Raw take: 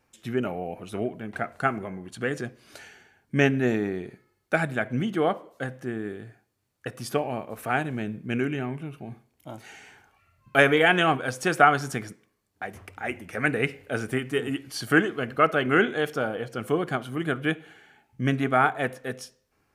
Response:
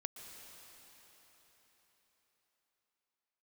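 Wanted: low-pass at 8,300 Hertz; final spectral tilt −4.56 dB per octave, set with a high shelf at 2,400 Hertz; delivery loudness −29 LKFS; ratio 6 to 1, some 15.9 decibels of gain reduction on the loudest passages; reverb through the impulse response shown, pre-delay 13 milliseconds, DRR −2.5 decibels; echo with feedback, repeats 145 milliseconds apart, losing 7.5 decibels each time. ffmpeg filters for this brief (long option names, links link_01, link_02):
-filter_complex "[0:a]lowpass=8300,highshelf=frequency=2400:gain=6,acompressor=threshold=-29dB:ratio=6,aecho=1:1:145|290|435|580|725:0.422|0.177|0.0744|0.0312|0.0131,asplit=2[link_01][link_02];[1:a]atrim=start_sample=2205,adelay=13[link_03];[link_02][link_03]afir=irnorm=-1:irlink=0,volume=4.5dB[link_04];[link_01][link_04]amix=inputs=2:normalize=0,volume=1dB"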